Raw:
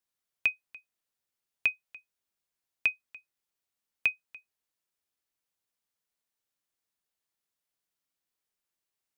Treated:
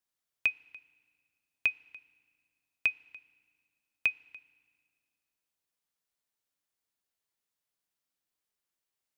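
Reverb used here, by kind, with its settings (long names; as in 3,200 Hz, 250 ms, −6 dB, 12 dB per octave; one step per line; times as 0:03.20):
feedback delay network reverb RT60 1.8 s, low-frequency decay 1.4×, high-frequency decay 0.95×, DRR 20 dB
level −1 dB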